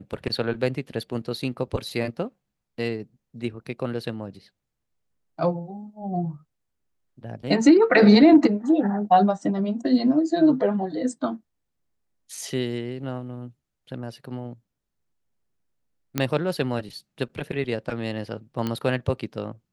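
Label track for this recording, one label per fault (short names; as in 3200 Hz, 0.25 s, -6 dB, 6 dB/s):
16.180000	16.180000	pop -8 dBFS
18.670000	18.670000	pop -14 dBFS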